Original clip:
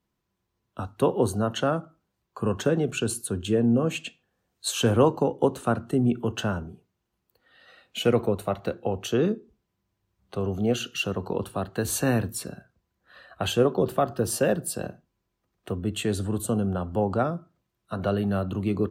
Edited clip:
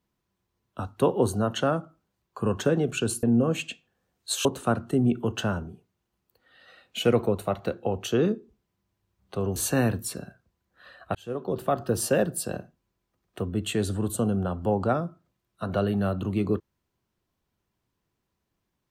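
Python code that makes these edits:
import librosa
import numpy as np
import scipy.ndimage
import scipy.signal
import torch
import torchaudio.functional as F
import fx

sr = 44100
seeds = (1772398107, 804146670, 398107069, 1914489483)

y = fx.edit(x, sr, fx.cut(start_s=3.23, length_s=0.36),
    fx.cut(start_s=4.81, length_s=0.64),
    fx.cut(start_s=10.56, length_s=1.3),
    fx.fade_in_span(start_s=13.45, length_s=0.68), tone=tone)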